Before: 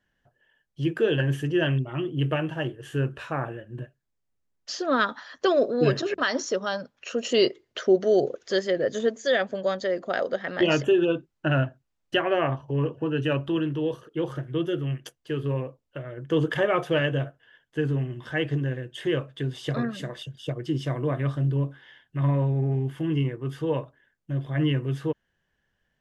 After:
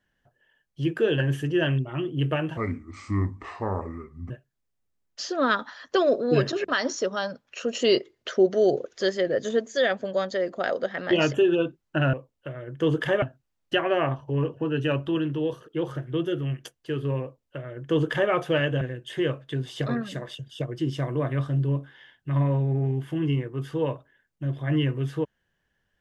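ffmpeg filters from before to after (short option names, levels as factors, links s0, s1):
-filter_complex "[0:a]asplit=6[s0][s1][s2][s3][s4][s5];[s0]atrim=end=2.574[s6];[s1]atrim=start=2.57:end=3.8,asetpts=PTS-STARTPTS,asetrate=31311,aresample=44100[s7];[s2]atrim=start=3.796:end=11.632[s8];[s3]atrim=start=15.628:end=16.722[s9];[s4]atrim=start=11.628:end=17.222[s10];[s5]atrim=start=18.688[s11];[s6][s7]acrossfade=d=0.004:c1=hsin:c2=hsin[s12];[s12][s8]acrossfade=d=0.004:c1=hsin:c2=hsin[s13];[s13][s9]acrossfade=d=0.004:c1=hsin:c2=hsin[s14];[s14][s10]acrossfade=d=0.004:c1=hsin:c2=hsin[s15];[s15][s11]acrossfade=d=0.004:c1=hsin:c2=hsin"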